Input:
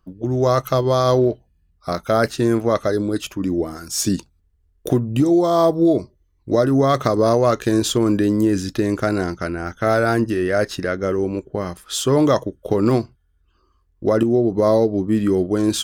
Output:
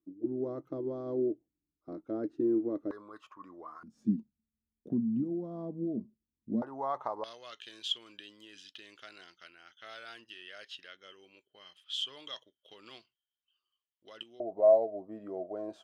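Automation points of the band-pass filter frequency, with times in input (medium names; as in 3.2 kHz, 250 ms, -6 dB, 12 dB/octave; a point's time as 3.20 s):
band-pass filter, Q 11
310 Hz
from 2.91 s 1.1 kHz
from 3.83 s 220 Hz
from 6.62 s 880 Hz
from 7.24 s 3.1 kHz
from 14.40 s 660 Hz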